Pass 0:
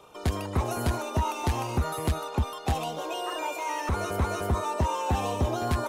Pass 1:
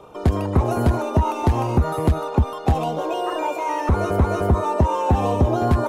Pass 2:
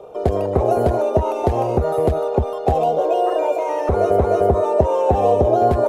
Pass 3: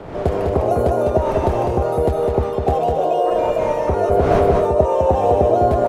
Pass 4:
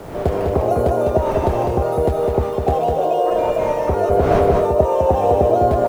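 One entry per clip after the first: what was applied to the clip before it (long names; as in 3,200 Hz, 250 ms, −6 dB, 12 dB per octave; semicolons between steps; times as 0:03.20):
tilt shelving filter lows +7 dB, about 1,500 Hz; downward compressor, threshold −17 dBFS, peak gain reduction 3.5 dB; level +4.5 dB
flat-topped bell 540 Hz +12 dB 1.2 octaves; level −3.5 dB
wind on the microphone 630 Hz −30 dBFS; on a send: single-tap delay 203 ms −4.5 dB; on the sum: level −1 dB
bit reduction 8 bits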